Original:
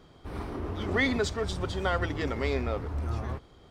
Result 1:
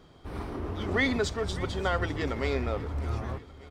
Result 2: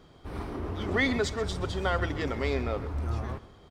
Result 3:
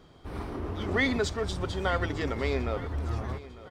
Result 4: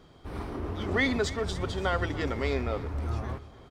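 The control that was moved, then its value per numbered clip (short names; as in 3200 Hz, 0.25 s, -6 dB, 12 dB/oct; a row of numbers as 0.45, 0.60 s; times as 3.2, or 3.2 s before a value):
feedback echo, time: 0.592, 0.131, 0.901, 0.287 s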